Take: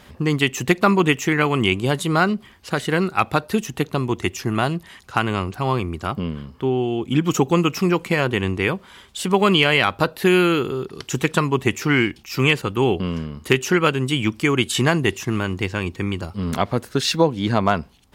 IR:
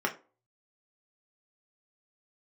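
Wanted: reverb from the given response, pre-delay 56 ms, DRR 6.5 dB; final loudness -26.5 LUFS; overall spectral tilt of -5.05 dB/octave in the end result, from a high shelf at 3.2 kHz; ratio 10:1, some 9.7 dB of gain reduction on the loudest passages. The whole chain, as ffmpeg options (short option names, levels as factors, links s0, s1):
-filter_complex "[0:a]highshelf=f=3200:g=-6,acompressor=threshold=0.0794:ratio=10,asplit=2[s0][s1];[1:a]atrim=start_sample=2205,adelay=56[s2];[s1][s2]afir=irnorm=-1:irlink=0,volume=0.168[s3];[s0][s3]amix=inputs=2:normalize=0,volume=1.06"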